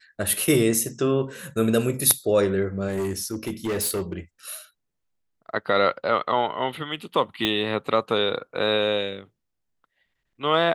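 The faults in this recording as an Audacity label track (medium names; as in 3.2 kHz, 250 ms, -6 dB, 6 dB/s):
2.870000	4.130000	clipped -22.5 dBFS
7.450000	7.450000	pop -9 dBFS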